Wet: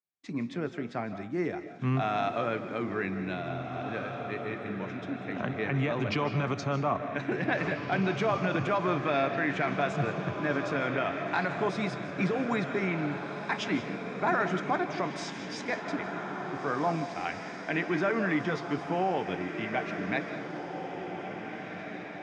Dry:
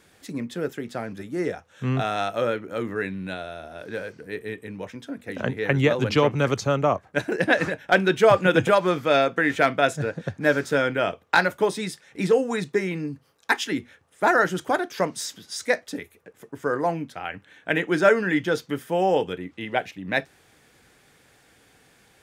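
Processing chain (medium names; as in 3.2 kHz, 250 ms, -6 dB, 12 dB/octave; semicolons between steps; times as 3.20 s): gate -49 dBFS, range -42 dB; tilt EQ -1.5 dB/octave; peak limiter -15 dBFS, peak gain reduction 11 dB; cabinet simulation 110–6400 Hz, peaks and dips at 500 Hz -7 dB, 730 Hz +4 dB, 1.1 kHz +7 dB, 2.3 kHz +7 dB; echo that smears into a reverb 1850 ms, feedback 53%, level -7.5 dB; on a send at -10.5 dB: reverberation RT60 0.50 s, pre-delay 115 ms; on the sum: trim -5 dB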